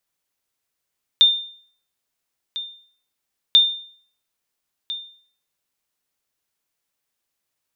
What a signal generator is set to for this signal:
ping with an echo 3,610 Hz, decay 0.52 s, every 2.34 s, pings 2, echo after 1.35 s, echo −16 dB −6 dBFS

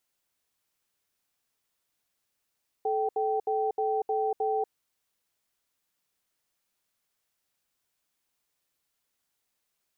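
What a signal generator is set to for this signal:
tone pair in a cadence 434 Hz, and 776 Hz, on 0.24 s, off 0.07 s, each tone −27.5 dBFS 1.86 s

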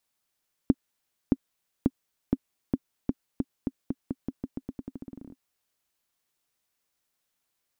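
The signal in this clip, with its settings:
bouncing ball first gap 0.62 s, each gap 0.87, 264 Hz, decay 43 ms −7.5 dBFS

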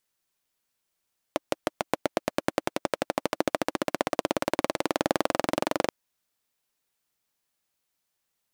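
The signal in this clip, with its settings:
pulse-train model of a single-cylinder engine, changing speed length 4.53 s, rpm 700, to 2,800, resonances 320/550 Hz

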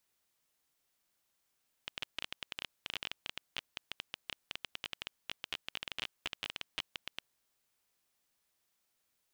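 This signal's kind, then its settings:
Geiger counter clicks 15 per second −20 dBFS 5.46 s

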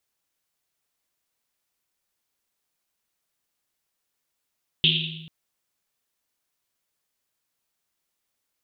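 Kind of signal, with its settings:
drum after Risset length 0.44 s, pitch 160 Hz, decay 1.60 s, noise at 3,200 Hz, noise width 1,100 Hz, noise 65%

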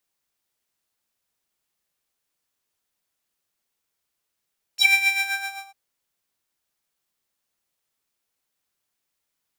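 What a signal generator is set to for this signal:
subtractive patch with tremolo G5, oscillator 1 square, sub −27.5 dB, noise −25 dB, filter highpass, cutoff 1,100 Hz, Q 7.9, filter envelope 2.5 octaves, filter decay 0.08 s, filter sustain 35%, attack 71 ms, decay 0.12 s, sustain −6.5 dB, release 0.62 s, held 0.33 s, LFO 7.7 Hz, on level 9 dB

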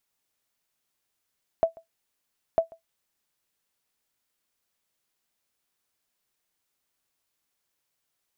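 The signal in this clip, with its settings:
ping with an echo 659 Hz, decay 0.13 s, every 0.95 s, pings 2, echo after 0.14 s, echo −25.5 dB −12 dBFS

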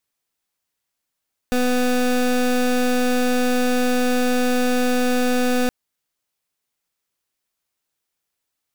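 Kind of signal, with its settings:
pulse wave 249 Hz, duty 24% −18.5 dBFS 4.17 s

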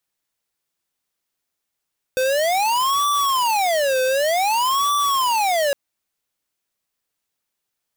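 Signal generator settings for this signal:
siren wail 514–1,160 Hz 0.54 per second square −19 dBFS 3.56 s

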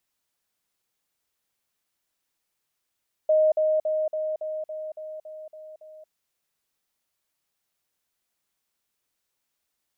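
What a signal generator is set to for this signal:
level staircase 622 Hz −16 dBFS, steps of −3 dB, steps 10, 0.23 s 0.05 s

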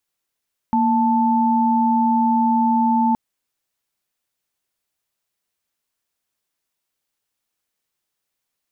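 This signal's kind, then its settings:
held notes A#3/A5 sine, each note −17 dBFS 2.42 s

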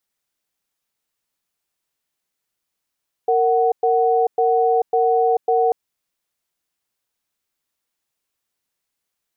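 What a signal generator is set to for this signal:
tone pair in a cadence 461 Hz, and 744 Hz, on 0.44 s, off 0.11 s, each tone −16.5 dBFS 2.44 s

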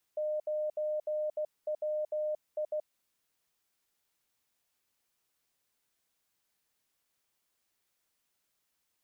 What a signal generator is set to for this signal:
Morse code "9WI" 16 words per minute 609 Hz −30 dBFS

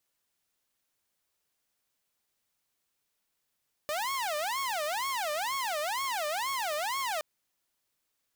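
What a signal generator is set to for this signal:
siren wail 593–1,100 Hz 2.1 per second saw −27.5 dBFS 3.32 s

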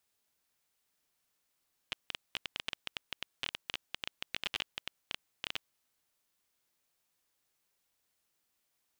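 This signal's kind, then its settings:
Geiger counter clicks 13 per second −17.5 dBFS 3.95 s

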